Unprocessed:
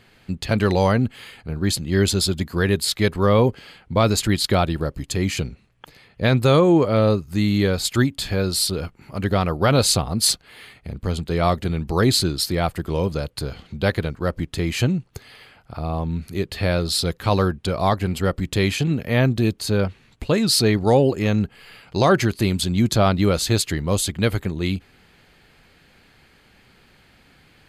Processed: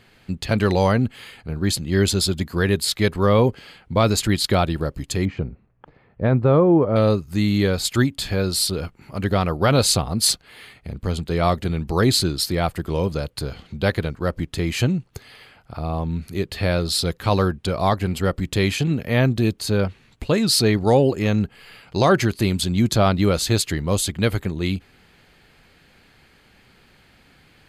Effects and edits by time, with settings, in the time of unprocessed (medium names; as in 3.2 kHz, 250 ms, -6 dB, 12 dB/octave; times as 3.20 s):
5.25–6.96 s: low-pass 1.2 kHz